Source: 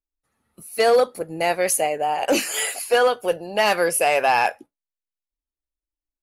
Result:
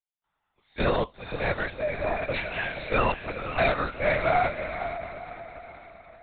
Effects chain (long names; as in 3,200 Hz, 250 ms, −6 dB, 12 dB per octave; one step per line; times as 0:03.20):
high-pass filter 850 Hz 12 dB per octave
formants moved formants −3 semitones
on a send: feedback delay with all-pass diffusion 511 ms, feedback 44%, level −9 dB
on the sum: harmonic and percussive parts rebalanced percussive −6 dB
linear-prediction vocoder at 8 kHz whisper